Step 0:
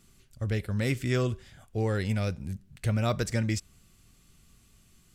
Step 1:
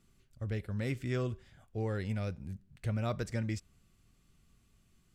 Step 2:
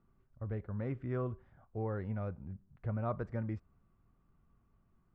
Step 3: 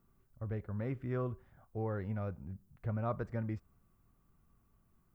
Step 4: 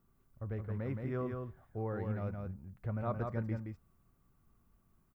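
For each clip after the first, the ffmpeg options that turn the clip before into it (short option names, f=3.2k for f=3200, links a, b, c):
-af "highshelf=f=3.5k:g=-7.5,volume=-6.5dB"
-af "lowpass=f=1.1k:t=q:w=1.8,volume=-3dB"
-af "aemphasis=mode=production:type=50kf"
-af "aecho=1:1:171:0.596,volume=-1dB"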